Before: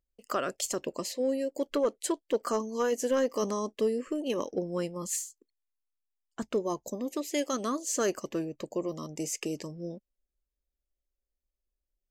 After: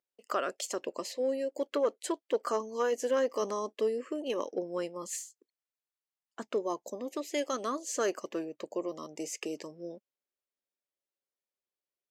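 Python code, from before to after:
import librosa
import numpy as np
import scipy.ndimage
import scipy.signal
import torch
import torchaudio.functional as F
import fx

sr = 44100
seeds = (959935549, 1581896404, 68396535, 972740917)

y = scipy.signal.sosfilt(scipy.signal.butter(2, 350.0, 'highpass', fs=sr, output='sos'), x)
y = fx.high_shelf(y, sr, hz=6300.0, db=-9.5)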